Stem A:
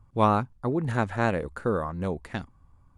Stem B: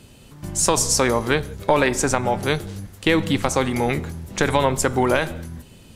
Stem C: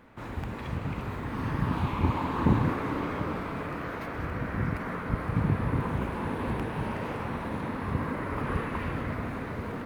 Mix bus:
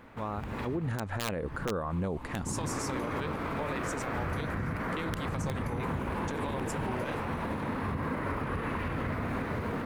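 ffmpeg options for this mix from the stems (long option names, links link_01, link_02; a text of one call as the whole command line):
ffmpeg -i stem1.wav -i stem2.wav -i stem3.wav -filter_complex "[0:a]highshelf=frequency=3400:gain=-6.5,dynaudnorm=framelen=170:gausssize=5:maxgain=14.5dB,volume=-6.5dB,afade=type=in:start_time=0.62:duration=0.73:silence=0.334965,asplit=2[link_01][link_02];[1:a]adelay=1900,volume=-17dB[link_03];[2:a]bandreject=frequency=60:width_type=h:width=6,bandreject=frequency=120:width_type=h:width=6,bandreject=frequency=180:width_type=h:width=6,bandreject=frequency=240:width_type=h:width=6,bandreject=frequency=300:width_type=h:width=6,bandreject=frequency=360:width_type=h:width=6,bandreject=frequency=420:width_type=h:width=6,volume=3dB[link_04];[link_02]apad=whole_len=434747[link_05];[link_04][link_05]sidechaincompress=threshold=-40dB:ratio=10:attack=11:release=295[link_06];[link_01][link_06]amix=inputs=2:normalize=0,aeval=exprs='(mod(3.98*val(0)+1,2)-1)/3.98':channel_layout=same,alimiter=limit=-22dB:level=0:latency=1:release=140,volume=0dB[link_07];[link_03][link_07]amix=inputs=2:normalize=0,alimiter=level_in=0.5dB:limit=-24dB:level=0:latency=1:release=44,volume=-0.5dB" out.wav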